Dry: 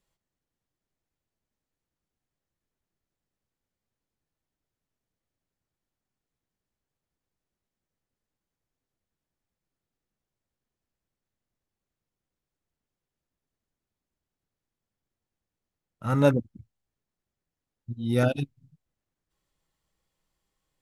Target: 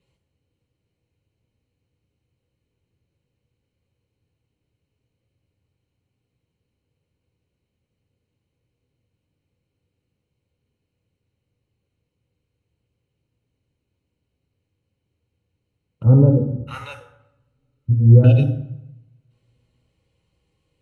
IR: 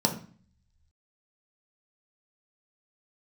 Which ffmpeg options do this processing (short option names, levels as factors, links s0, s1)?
-filter_complex "[0:a]alimiter=limit=0.126:level=0:latency=1:release=481,asettb=1/sr,asplit=3[s0][s1][s2];[s0]atrim=end=16.034[s3];[s1]atrim=start=16.03:end=18.24,asetpts=PTS-STARTPTS,afade=t=in:d=0.004:c=qsin,afade=t=out:st=2.206:d=0.004:c=qsin,acrossover=split=960[s4][s5];[s5]adelay=640[s6];[s4][s6]amix=inputs=2:normalize=0,atrim=end_sample=97461[s7];[s2]atrim=start=18.236[s8];[s3][s7]acrossfade=d=0.004:c1=hsin:c2=qsin[s9];[s9][s8]acrossfade=d=0.004:c1=qsin:c2=hsin[s10];[1:a]atrim=start_sample=2205,asetrate=23373,aresample=44100[s11];[s10][s11]afir=irnorm=-1:irlink=0,volume=0.447"